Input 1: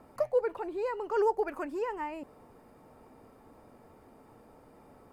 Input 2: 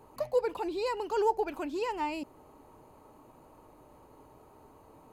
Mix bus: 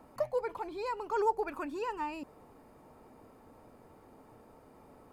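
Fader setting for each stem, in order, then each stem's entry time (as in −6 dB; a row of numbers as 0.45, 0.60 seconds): −1.5, −9.0 decibels; 0.00, 0.00 seconds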